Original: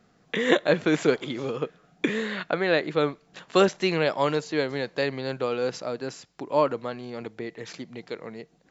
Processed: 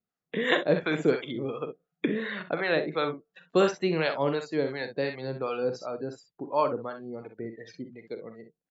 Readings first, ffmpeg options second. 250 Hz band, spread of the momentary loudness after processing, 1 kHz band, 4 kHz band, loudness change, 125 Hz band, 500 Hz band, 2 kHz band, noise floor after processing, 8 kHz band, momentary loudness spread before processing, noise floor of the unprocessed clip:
-3.0 dB, 16 LU, -2.5 dB, -4.0 dB, -3.0 dB, -2.5 dB, -3.0 dB, -2.5 dB, under -85 dBFS, no reading, 15 LU, -62 dBFS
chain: -filter_complex "[0:a]afftdn=nr=27:nf=-38,aecho=1:1:44|62:0.266|0.316,acrossover=split=640[s0][s1];[s0]aeval=exprs='val(0)*(1-0.7/2+0.7/2*cos(2*PI*2.8*n/s))':c=same[s2];[s1]aeval=exprs='val(0)*(1-0.7/2-0.7/2*cos(2*PI*2.8*n/s))':c=same[s3];[s2][s3]amix=inputs=2:normalize=0"

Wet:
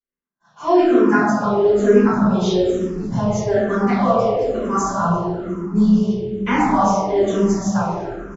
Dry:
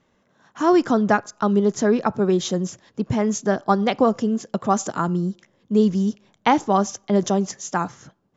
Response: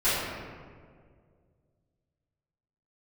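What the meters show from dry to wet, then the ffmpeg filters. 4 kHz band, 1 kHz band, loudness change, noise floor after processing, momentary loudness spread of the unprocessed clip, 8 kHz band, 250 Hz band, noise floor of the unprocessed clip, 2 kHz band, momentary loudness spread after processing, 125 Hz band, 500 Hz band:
-0.5 dB, +2.5 dB, +3.5 dB, -68 dBFS, 8 LU, no reading, +3.5 dB, -65 dBFS, +4.0 dB, 9 LU, +4.0 dB, +5.0 dB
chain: -filter_complex "[0:a]agate=range=0.0282:threshold=0.00141:ratio=16:detection=peak,flanger=delay=4.2:depth=3.7:regen=-45:speed=0.55:shape=triangular,asplit=5[s0][s1][s2][s3][s4];[s1]adelay=349,afreqshift=-80,volume=0.0891[s5];[s2]adelay=698,afreqshift=-160,volume=0.0457[s6];[s3]adelay=1047,afreqshift=-240,volume=0.0232[s7];[s4]adelay=1396,afreqshift=-320,volume=0.0119[s8];[s0][s5][s6][s7][s8]amix=inputs=5:normalize=0[s9];[1:a]atrim=start_sample=2205[s10];[s9][s10]afir=irnorm=-1:irlink=0,asplit=2[s11][s12];[s12]afreqshift=-1.1[s13];[s11][s13]amix=inputs=2:normalize=1,volume=0.562"

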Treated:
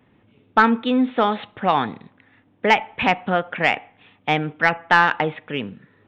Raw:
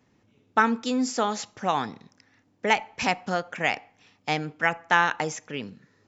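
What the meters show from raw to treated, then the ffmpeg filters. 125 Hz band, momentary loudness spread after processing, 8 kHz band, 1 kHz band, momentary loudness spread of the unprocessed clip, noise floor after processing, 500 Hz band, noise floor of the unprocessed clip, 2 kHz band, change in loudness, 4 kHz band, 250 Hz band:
+7.0 dB, 13 LU, no reading, +6.0 dB, 13 LU, -59 dBFS, +6.5 dB, -66 dBFS, +6.0 dB, +6.0 dB, +4.5 dB, +7.0 dB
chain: -af "aresample=8000,aresample=44100,acontrast=80"

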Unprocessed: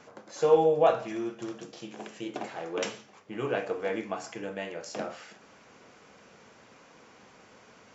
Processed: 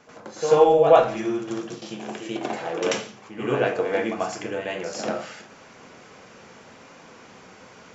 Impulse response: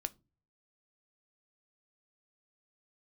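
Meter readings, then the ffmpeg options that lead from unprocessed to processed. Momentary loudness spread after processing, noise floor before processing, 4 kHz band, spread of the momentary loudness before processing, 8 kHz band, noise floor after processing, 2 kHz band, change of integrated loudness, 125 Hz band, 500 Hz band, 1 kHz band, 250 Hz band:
18 LU, -56 dBFS, +8.0 dB, 20 LU, no reading, -49 dBFS, +8.0 dB, +6.5 dB, +7.0 dB, +7.0 dB, +8.0 dB, +7.0 dB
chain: -filter_complex "[0:a]asplit=2[s0][s1];[1:a]atrim=start_sample=2205,asetrate=26019,aresample=44100,adelay=89[s2];[s1][s2]afir=irnorm=-1:irlink=0,volume=2.11[s3];[s0][s3]amix=inputs=2:normalize=0,volume=0.891"

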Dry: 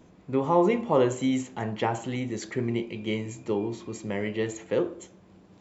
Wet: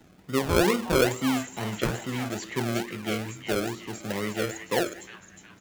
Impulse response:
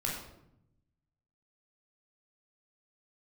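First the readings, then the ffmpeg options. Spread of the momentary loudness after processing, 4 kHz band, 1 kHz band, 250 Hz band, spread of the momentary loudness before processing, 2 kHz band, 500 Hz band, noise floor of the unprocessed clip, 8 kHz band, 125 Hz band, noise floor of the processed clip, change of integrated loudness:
11 LU, +7.5 dB, -1.5 dB, -0.5 dB, 11 LU, +6.5 dB, -1.0 dB, -55 dBFS, no reading, +1.0 dB, -54 dBFS, 0.0 dB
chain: -filter_complex "[0:a]acrossover=split=110|1100[s0][s1][s2];[s1]acrusher=samples=37:mix=1:aa=0.000001:lfo=1:lforange=22.2:lforate=2.3[s3];[s2]asplit=7[s4][s5][s6][s7][s8][s9][s10];[s5]adelay=361,afreqshift=-100,volume=0.596[s11];[s6]adelay=722,afreqshift=-200,volume=0.279[s12];[s7]adelay=1083,afreqshift=-300,volume=0.132[s13];[s8]adelay=1444,afreqshift=-400,volume=0.0617[s14];[s9]adelay=1805,afreqshift=-500,volume=0.0292[s15];[s10]adelay=2166,afreqshift=-600,volume=0.0136[s16];[s4][s11][s12][s13][s14][s15][s16]amix=inputs=7:normalize=0[s17];[s0][s3][s17]amix=inputs=3:normalize=0"

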